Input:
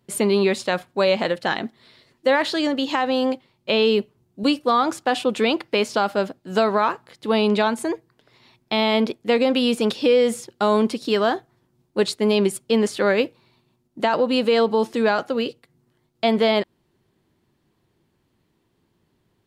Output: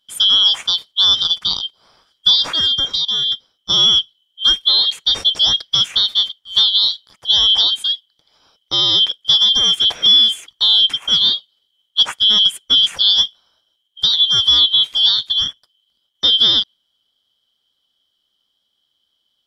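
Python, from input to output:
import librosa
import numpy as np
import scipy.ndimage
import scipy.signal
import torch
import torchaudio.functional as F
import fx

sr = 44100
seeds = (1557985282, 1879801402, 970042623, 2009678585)

y = fx.band_shuffle(x, sr, order='3412')
y = fx.dynamic_eq(y, sr, hz=3000.0, q=1.0, threshold_db=-30.0, ratio=4.0, max_db=7)
y = fx.level_steps(y, sr, step_db=17, at=(2.87, 3.3), fade=0.02)
y = y * 10.0 ** (-1.0 / 20.0)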